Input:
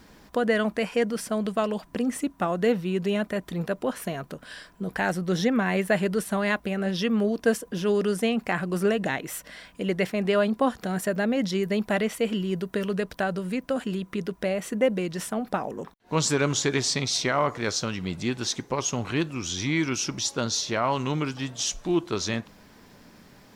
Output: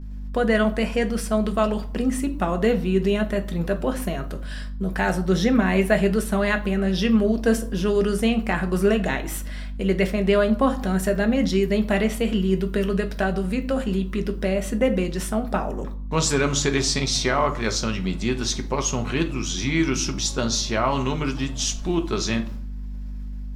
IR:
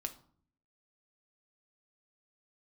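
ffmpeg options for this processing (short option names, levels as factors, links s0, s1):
-filter_complex "[0:a]agate=range=0.0224:threshold=0.00708:ratio=3:detection=peak,aeval=exprs='val(0)+0.0141*(sin(2*PI*50*n/s)+sin(2*PI*2*50*n/s)/2+sin(2*PI*3*50*n/s)/3+sin(2*PI*4*50*n/s)/4+sin(2*PI*5*50*n/s)/5)':c=same[s0];[1:a]atrim=start_sample=2205[s1];[s0][s1]afir=irnorm=-1:irlink=0,volume=1.58"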